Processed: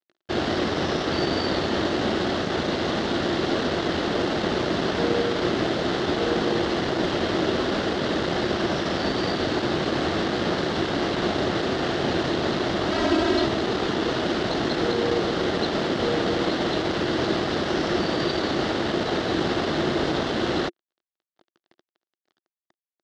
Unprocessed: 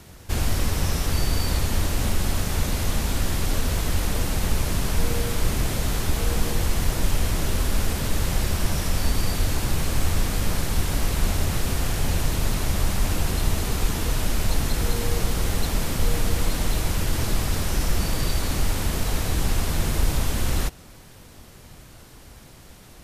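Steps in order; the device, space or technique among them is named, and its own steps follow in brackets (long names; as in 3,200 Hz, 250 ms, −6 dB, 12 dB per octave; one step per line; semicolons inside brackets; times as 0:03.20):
blown loudspeaker (dead-zone distortion −36.5 dBFS; loudspeaker in its box 240–4,100 Hz, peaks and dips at 350 Hz +8 dB, 650 Hz +3 dB, 970 Hz −4 dB, 2,400 Hz −9 dB)
0:12.91–0:13.46: comb filter 3.1 ms, depth 88%
level +8 dB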